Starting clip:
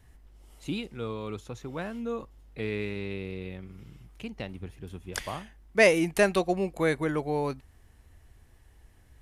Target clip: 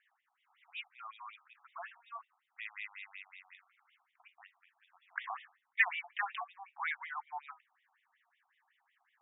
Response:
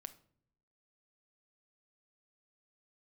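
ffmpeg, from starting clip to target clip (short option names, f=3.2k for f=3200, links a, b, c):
-filter_complex "[0:a]asettb=1/sr,asplit=3[a][b][c];[a]atrim=end=3.554[d];[b]atrim=start=3.55:end=4.97,asetpts=PTS-STARTPTS,afade=t=in:d=0.004:c=qsin,afade=t=out:st=1.416:d=0.004:c=qsin,acompressor=threshold=-39dB:ratio=6[e];[c]atrim=start=4.966[f];[d][e]acrossfade=d=0.004:c1=hsin:c2=qsin[g];[g][f]acrossfade=d=0.004:c1=qsin:c2=hsin,flanger=delay=7.1:depth=6.5:regen=-82:speed=0.3:shape=sinusoidal,afftfilt=real='re*between(b*sr/1024,920*pow(2700/920,0.5+0.5*sin(2*PI*5.4*pts/sr))/1.41,920*pow(2700/920,0.5+0.5*sin(2*PI*5.4*pts/sr))*1.41)':imag='im*between(b*sr/1024,920*pow(2700/920,0.5+0.5*sin(2*PI*5.4*pts/sr))/1.41,920*pow(2700/920,0.5+0.5*sin(2*PI*5.4*pts/sr))*1.41)':win_size=1024:overlap=0.75,volume=3dB"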